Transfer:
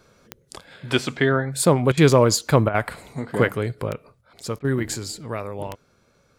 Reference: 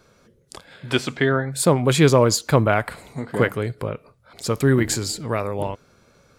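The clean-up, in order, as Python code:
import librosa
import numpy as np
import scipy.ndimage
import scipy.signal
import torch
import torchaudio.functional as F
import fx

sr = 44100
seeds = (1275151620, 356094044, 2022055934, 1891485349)

y = fx.fix_declick_ar(x, sr, threshold=10.0)
y = fx.fix_interpolate(y, sr, at_s=(1.92, 2.69, 4.59), length_ms=52.0)
y = fx.gain(y, sr, db=fx.steps((0.0, 0.0), (4.21, 5.5)))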